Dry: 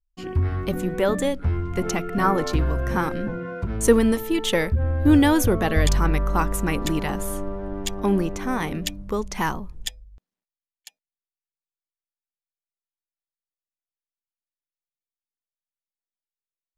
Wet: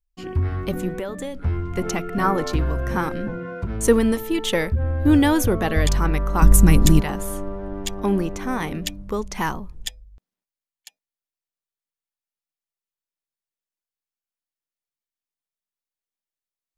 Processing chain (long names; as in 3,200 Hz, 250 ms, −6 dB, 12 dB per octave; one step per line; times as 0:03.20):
0:00.90–0:01.35: downward compressor 10 to 1, threshold −26 dBFS, peak gain reduction 10.5 dB
0:06.42–0:07.01: bass and treble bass +15 dB, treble +11 dB